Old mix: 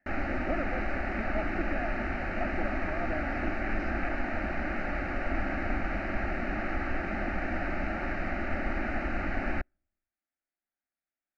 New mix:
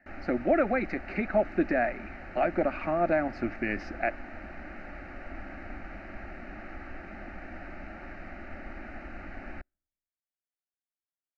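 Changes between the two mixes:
speech +11.5 dB; background -10.5 dB

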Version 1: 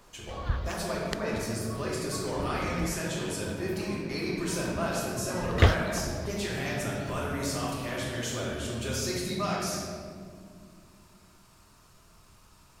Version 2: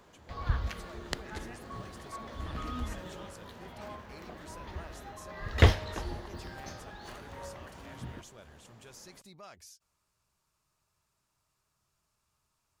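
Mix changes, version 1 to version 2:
speech -11.5 dB; reverb: off

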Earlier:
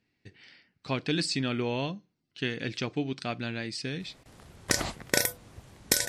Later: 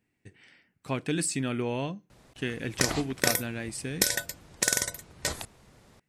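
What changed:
speech: remove synth low-pass 4600 Hz, resonance Q 3.4; background: entry -1.90 s

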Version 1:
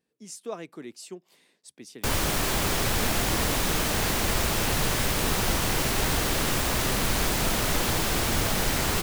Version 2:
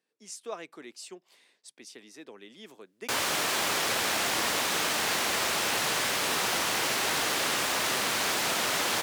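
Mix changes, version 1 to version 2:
background: entry +1.05 s; master: add weighting filter A

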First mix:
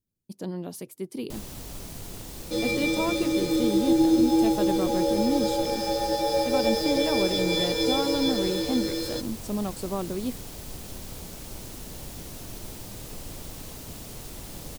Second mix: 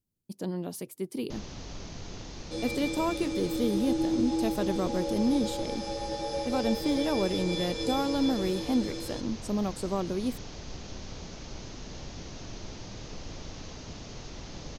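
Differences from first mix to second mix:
first sound: add Chebyshev low-pass 6500 Hz, order 6; second sound -8.5 dB

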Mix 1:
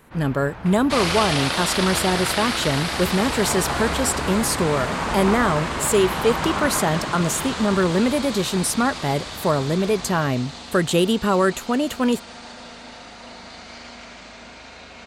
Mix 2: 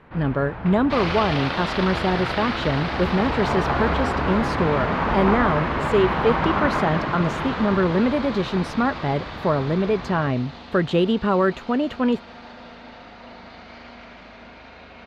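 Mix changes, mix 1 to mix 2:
first sound +4.0 dB; master: add air absorption 270 m

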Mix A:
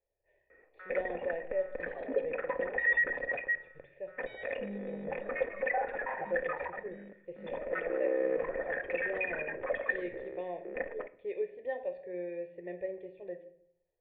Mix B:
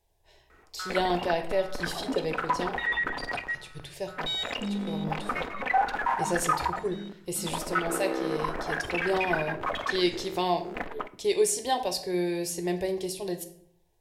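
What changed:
background -8.5 dB; master: remove vocal tract filter e

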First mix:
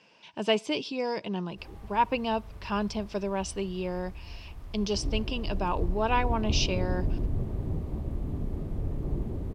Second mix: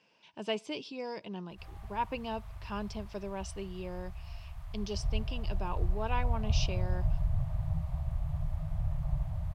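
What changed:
speech -8.5 dB; background: add Chebyshev band-stop 160–620 Hz, order 4

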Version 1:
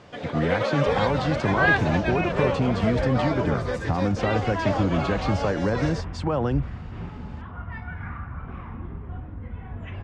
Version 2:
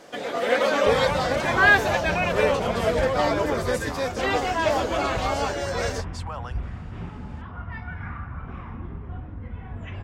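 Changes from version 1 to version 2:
speech: add ladder high-pass 680 Hz, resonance 20%; first sound +3.5 dB; master: remove air absorption 100 m

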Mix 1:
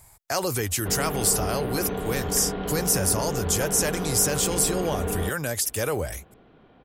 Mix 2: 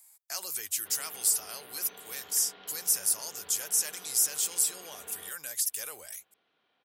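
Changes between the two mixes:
speech: add high shelf 5800 Hz -6 dB; master: add differentiator

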